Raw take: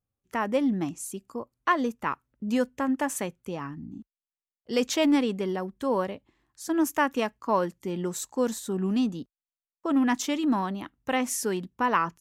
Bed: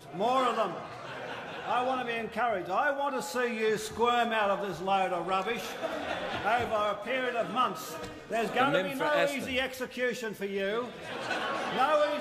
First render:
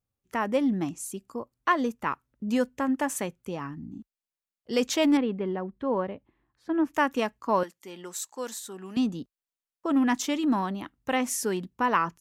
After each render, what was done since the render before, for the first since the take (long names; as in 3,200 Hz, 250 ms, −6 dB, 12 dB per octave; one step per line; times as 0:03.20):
0:05.17–0:06.94: high-frequency loss of the air 420 metres
0:07.63–0:08.97: high-pass filter 1,200 Hz 6 dB per octave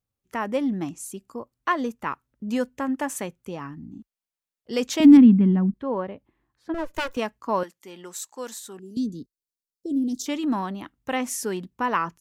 0:05.00–0:05.74: low shelf with overshoot 330 Hz +11.5 dB, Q 3
0:06.74–0:07.17: lower of the sound and its delayed copy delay 2 ms
0:08.79–0:10.26: Chebyshev band-stop filter 430–4,200 Hz, order 3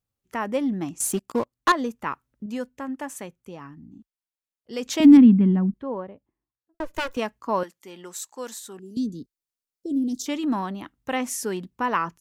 0:01.00–0:01.72: leveller curve on the samples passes 3
0:02.46–0:04.86: clip gain −5.5 dB
0:05.41–0:06.80: fade out and dull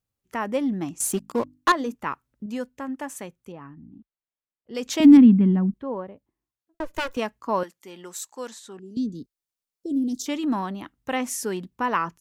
0:01.18–0:01.95: mains-hum notches 50/100/150/200/250/300 Hz
0:03.52–0:04.75: high-frequency loss of the air 390 metres
0:08.47–0:09.15: high-frequency loss of the air 68 metres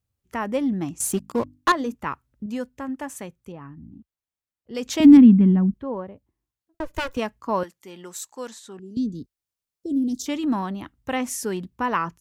parametric band 73 Hz +11 dB 1.6 octaves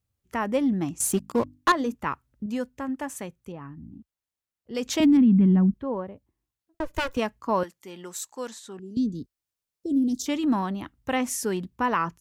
brickwall limiter −13 dBFS, peak gain reduction 10 dB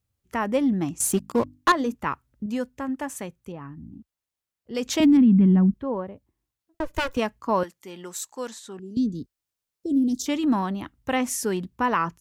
level +1.5 dB